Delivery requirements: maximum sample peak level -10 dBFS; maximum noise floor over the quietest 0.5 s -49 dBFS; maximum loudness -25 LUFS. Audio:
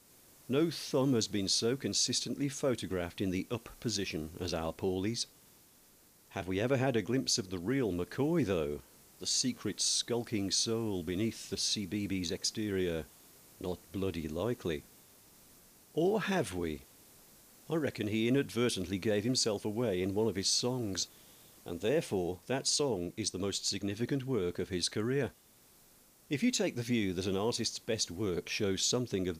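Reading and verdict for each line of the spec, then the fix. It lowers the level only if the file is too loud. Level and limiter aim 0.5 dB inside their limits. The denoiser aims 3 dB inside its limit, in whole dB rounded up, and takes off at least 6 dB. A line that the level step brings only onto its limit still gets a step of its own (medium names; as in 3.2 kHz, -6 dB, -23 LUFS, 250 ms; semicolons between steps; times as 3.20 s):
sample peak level -20.5 dBFS: pass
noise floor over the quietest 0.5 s -63 dBFS: pass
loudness -33.5 LUFS: pass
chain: none needed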